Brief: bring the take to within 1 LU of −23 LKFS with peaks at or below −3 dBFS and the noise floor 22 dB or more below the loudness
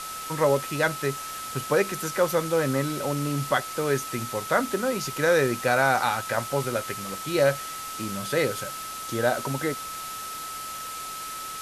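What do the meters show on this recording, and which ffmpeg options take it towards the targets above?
interfering tone 1,300 Hz; level of the tone −35 dBFS; background noise floor −36 dBFS; target noise floor −49 dBFS; integrated loudness −26.5 LKFS; sample peak −8.0 dBFS; target loudness −23.0 LKFS
→ -af "bandreject=frequency=1300:width=30"
-af "afftdn=noise_reduction=13:noise_floor=-36"
-af "volume=3.5dB"

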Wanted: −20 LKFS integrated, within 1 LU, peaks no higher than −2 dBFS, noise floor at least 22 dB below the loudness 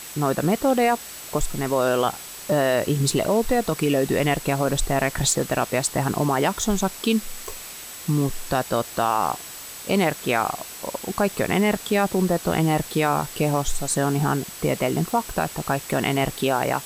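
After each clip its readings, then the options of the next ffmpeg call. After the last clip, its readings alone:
interfering tone 7,900 Hz; level of the tone −43 dBFS; background noise floor −38 dBFS; target noise floor −45 dBFS; integrated loudness −23.0 LKFS; sample peak −7.5 dBFS; target loudness −20.0 LKFS
→ -af "bandreject=frequency=7900:width=30"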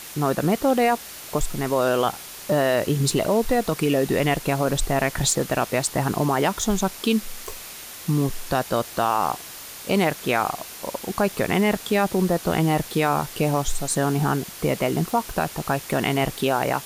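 interfering tone none found; background noise floor −39 dBFS; target noise floor −45 dBFS
→ -af "afftdn=noise_reduction=6:noise_floor=-39"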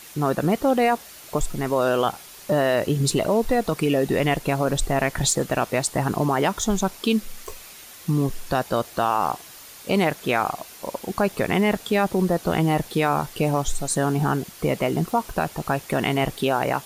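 background noise floor −44 dBFS; target noise floor −45 dBFS
→ -af "afftdn=noise_reduction=6:noise_floor=-44"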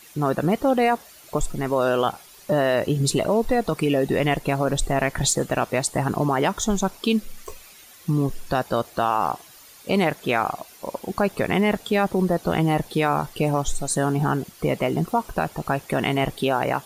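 background noise floor −48 dBFS; integrated loudness −23.0 LKFS; sample peak −7.5 dBFS; target loudness −20.0 LKFS
→ -af "volume=3dB"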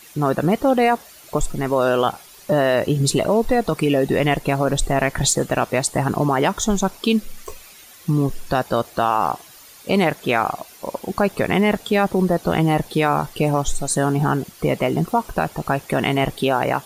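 integrated loudness −20.0 LKFS; sample peak −4.5 dBFS; background noise floor −45 dBFS

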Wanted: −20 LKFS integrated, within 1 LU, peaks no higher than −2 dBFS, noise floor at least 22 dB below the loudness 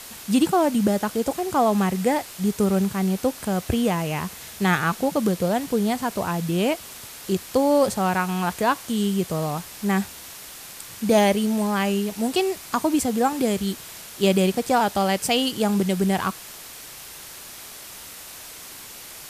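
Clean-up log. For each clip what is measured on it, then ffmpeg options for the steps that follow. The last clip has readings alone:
background noise floor −41 dBFS; target noise floor −45 dBFS; integrated loudness −23.0 LKFS; sample peak −7.5 dBFS; target loudness −20.0 LKFS
→ -af "afftdn=noise_reduction=6:noise_floor=-41"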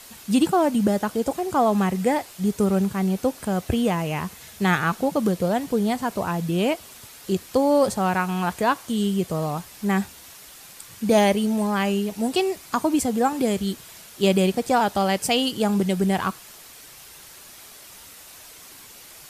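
background noise floor −45 dBFS; integrated loudness −23.0 LKFS; sample peak −8.0 dBFS; target loudness −20.0 LKFS
→ -af "volume=3dB"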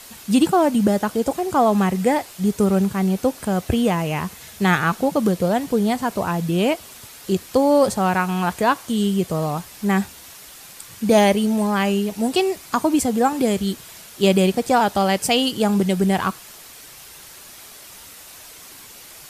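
integrated loudness −20.0 LKFS; sample peak −5.0 dBFS; background noise floor −42 dBFS

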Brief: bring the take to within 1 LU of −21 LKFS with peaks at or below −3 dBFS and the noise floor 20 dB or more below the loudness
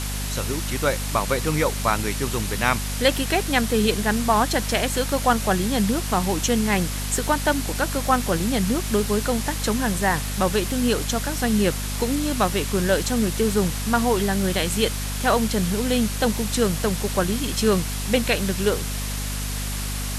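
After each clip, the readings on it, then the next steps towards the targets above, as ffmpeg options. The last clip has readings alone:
mains hum 50 Hz; hum harmonics up to 250 Hz; level of the hum −26 dBFS; background noise floor −28 dBFS; target noise floor −43 dBFS; integrated loudness −22.5 LKFS; sample peak −4.0 dBFS; target loudness −21.0 LKFS
→ -af "bandreject=frequency=50:width_type=h:width=6,bandreject=frequency=100:width_type=h:width=6,bandreject=frequency=150:width_type=h:width=6,bandreject=frequency=200:width_type=h:width=6,bandreject=frequency=250:width_type=h:width=6"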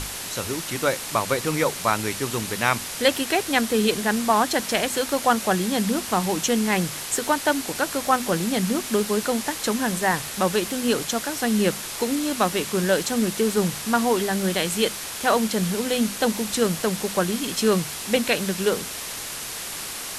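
mains hum none found; background noise floor −33 dBFS; target noise floor −43 dBFS
→ -af "afftdn=noise_reduction=10:noise_floor=-33"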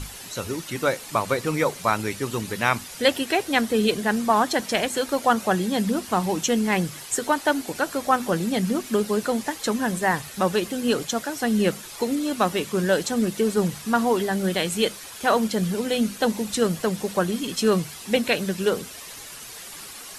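background noise floor −40 dBFS; target noise floor −44 dBFS
→ -af "afftdn=noise_reduction=6:noise_floor=-40"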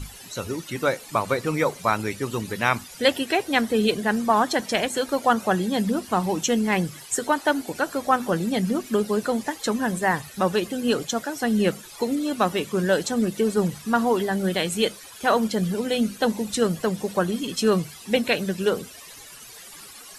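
background noise floor −44 dBFS; integrated loudness −24.0 LKFS; sample peak −4.0 dBFS; target loudness −21.0 LKFS
→ -af "volume=3dB,alimiter=limit=-3dB:level=0:latency=1"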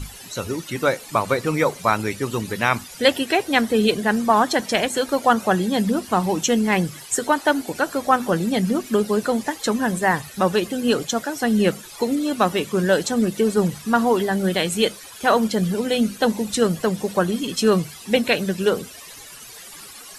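integrated loudness −21.0 LKFS; sample peak −3.0 dBFS; background noise floor −41 dBFS

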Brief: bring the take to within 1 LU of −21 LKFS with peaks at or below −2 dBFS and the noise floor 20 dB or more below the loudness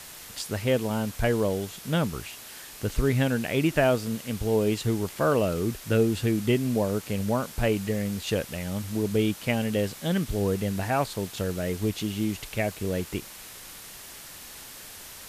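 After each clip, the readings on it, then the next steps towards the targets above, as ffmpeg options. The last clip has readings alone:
background noise floor −44 dBFS; target noise floor −48 dBFS; integrated loudness −27.5 LKFS; sample peak −9.5 dBFS; target loudness −21.0 LKFS
→ -af "afftdn=noise_reduction=6:noise_floor=-44"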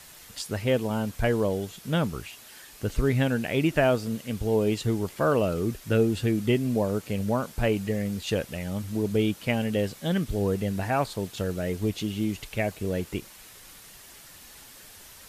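background noise floor −49 dBFS; integrated loudness −27.5 LKFS; sample peak −10.0 dBFS; target loudness −21.0 LKFS
→ -af "volume=6.5dB"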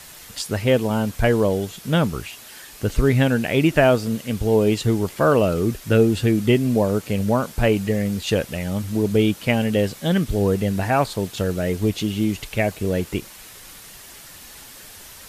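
integrated loudness −21.0 LKFS; sample peak −3.5 dBFS; background noise floor −42 dBFS

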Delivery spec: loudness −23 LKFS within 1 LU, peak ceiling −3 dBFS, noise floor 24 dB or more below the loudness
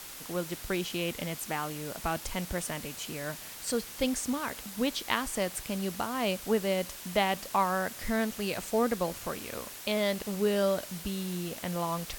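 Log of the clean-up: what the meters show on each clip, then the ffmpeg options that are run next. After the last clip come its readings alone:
background noise floor −44 dBFS; target noise floor −56 dBFS; integrated loudness −32.0 LKFS; sample peak −10.0 dBFS; target loudness −23.0 LKFS
→ -af "afftdn=noise_reduction=12:noise_floor=-44"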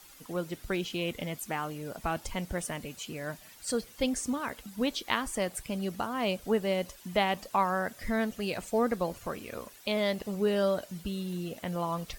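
background noise floor −53 dBFS; target noise floor −57 dBFS
→ -af "afftdn=noise_reduction=6:noise_floor=-53"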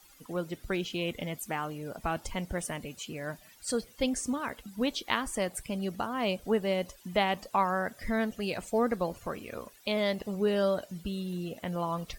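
background noise floor −57 dBFS; integrated loudness −32.5 LKFS; sample peak −10.0 dBFS; target loudness −23.0 LKFS
→ -af "volume=9.5dB,alimiter=limit=-3dB:level=0:latency=1"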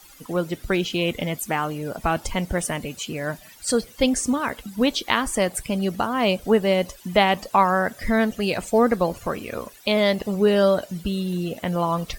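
integrated loudness −23.0 LKFS; sample peak −3.0 dBFS; background noise floor −48 dBFS

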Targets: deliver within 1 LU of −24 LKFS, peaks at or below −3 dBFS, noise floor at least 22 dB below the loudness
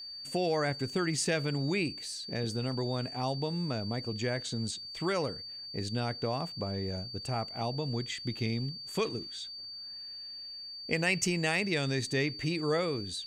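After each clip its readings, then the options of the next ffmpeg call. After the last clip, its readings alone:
interfering tone 4,600 Hz; level of the tone −41 dBFS; integrated loudness −33.0 LKFS; sample peak −14.5 dBFS; target loudness −24.0 LKFS
→ -af "bandreject=frequency=4600:width=30"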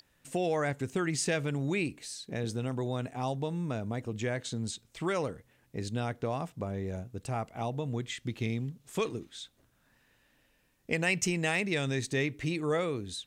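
interfering tone none found; integrated loudness −33.5 LKFS; sample peak −15.0 dBFS; target loudness −24.0 LKFS
→ -af "volume=9.5dB"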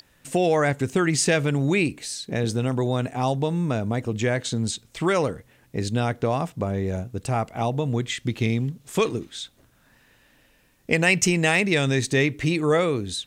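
integrated loudness −24.0 LKFS; sample peak −5.5 dBFS; background noise floor −60 dBFS

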